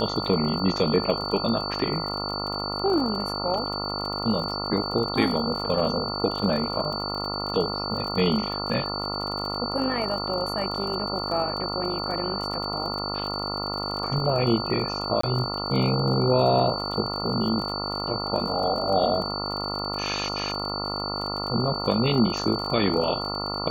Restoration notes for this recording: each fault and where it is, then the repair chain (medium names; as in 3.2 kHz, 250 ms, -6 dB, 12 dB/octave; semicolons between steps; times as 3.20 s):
buzz 50 Hz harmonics 28 -32 dBFS
crackle 44 per s -32 dBFS
whine 4.5 kHz -31 dBFS
15.21–15.23 s: dropout 24 ms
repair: de-click; de-hum 50 Hz, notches 28; band-stop 4.5 kHz, Q 30; interpolate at 15.21 s, 24 ms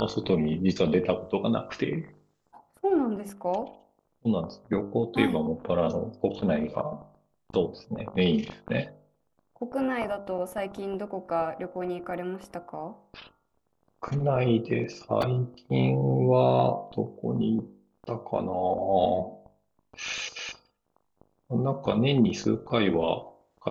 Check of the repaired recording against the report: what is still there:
nothing left